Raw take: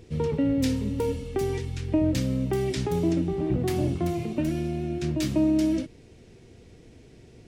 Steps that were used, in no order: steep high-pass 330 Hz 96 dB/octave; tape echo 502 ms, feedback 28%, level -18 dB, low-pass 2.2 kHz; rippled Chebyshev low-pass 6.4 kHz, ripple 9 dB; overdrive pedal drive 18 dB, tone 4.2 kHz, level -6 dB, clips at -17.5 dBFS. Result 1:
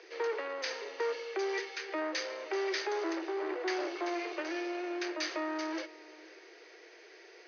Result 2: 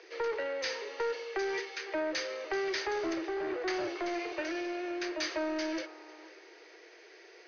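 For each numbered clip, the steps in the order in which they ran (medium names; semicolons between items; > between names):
overdrive pedal > steep high-pass > tape echo > rippled Chebyshev low-pass; tape echo > steep high-pass > overdrive pedal > rippled Chebyshev low-pass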